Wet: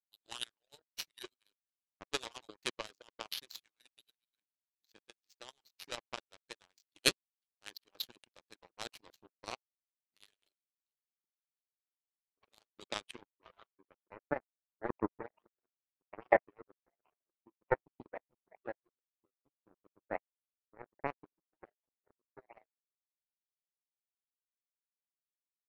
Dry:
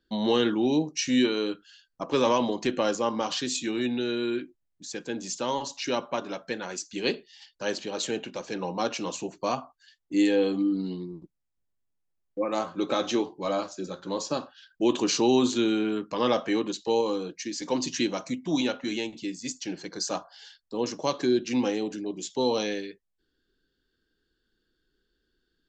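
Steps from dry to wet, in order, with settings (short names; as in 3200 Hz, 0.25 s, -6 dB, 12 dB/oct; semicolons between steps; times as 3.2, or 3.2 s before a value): median-filter separation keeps percussive; low-pass sweep 4100 Hz -> 710 Hz, 12.74–14.23; power-law curve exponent 3; gain +4 dB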